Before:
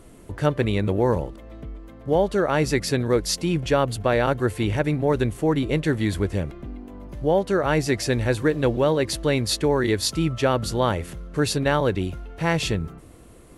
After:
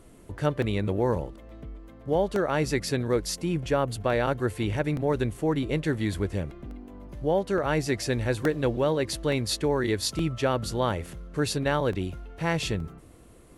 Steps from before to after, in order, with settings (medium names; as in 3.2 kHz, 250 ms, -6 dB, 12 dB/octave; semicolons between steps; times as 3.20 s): 3.29–3.92 s: dynamic bell 3.9 kHz, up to -5 dB, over -38 dBFS, Q 1; crackling interface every 0.87 s, samples 64, repeat, from 0.62 s; trim -4.5 dB